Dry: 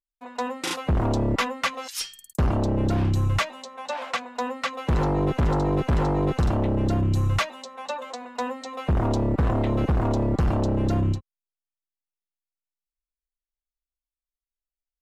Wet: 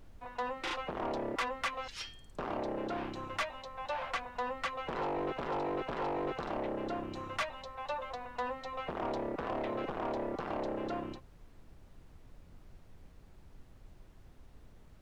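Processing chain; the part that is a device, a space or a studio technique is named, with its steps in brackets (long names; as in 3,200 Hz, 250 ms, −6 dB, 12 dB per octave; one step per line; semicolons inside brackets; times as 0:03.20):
aircraft cabin announcement (band-pass filter 450–3,100 Hz; soft clipping −25 dBFS, distortion −12 dB; brown noise bed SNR 14 dB)
level −3.5 dB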